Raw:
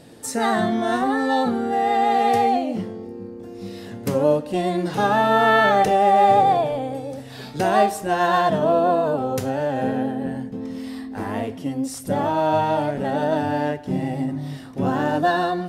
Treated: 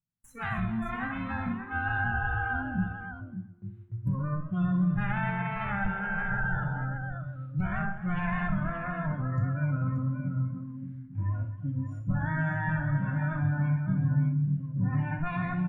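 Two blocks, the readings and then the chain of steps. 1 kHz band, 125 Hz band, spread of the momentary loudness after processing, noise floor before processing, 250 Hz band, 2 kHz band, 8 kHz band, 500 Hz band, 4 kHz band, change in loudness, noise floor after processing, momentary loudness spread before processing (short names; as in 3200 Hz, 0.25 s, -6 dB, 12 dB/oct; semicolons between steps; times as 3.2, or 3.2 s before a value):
-17.5 dB, +3.5 dB, 8 LU, -38 dBFS, -7.5 dB, -5.0 dB, under -30 dB, -24.0 dB, under -20 dB, -10.0 dB, -46 dBFS, 16 LU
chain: minimum comb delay 0.3 ms; treble ducked by the level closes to 2600 Hz, closed at -13.5 dBFS; spectral noise reduction 25 dB; low shelf 130 Hz +9 dB; limiter -17 dBFS, peak gain reduction 11.5 dB; EQ curve 180 Hz 0 dB, 370 Hz -24 dB, 540 Hz -23 dB, 890 Hz -9 dB, 1600 Hz +1 dB, 2900 Hz -13 dB, 5000 Hz -30 dB, 13000 Hz -18 dB; gate with hold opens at -50 dBFS; on a send: tapped delay 62/259/277/579 ms -9.5/-19.5/-19/-9 dB; on the sum: spectral repair 5.93–6.82, 420–1000 Hz before; warbling echo 0.127 s, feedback 39%, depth 105 cents, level -17 dB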